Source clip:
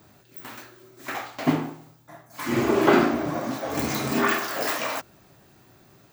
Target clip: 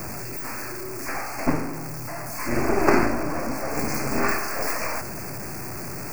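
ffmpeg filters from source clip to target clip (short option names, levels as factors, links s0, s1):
-af "aeval=exprs='val(0)+0.5*0.0944*sgn(val(0))':c=same,aeval=exprs='0.668*(cos(1*acos(clip(val(0)/0.668,-1,1)))-cos(1*PI/2))+0.15*(cos(3*acos(clip(val(0)/0.668,-1,1)))-cos(3*PI/2))+0.0596*(cos(8*acos(clip(val(0)/0.668,-1,1)))-cos(8*PI/2))':c=same,asuperstop=centerf=3400:order=12:qfactor=1.9,volume=1.26"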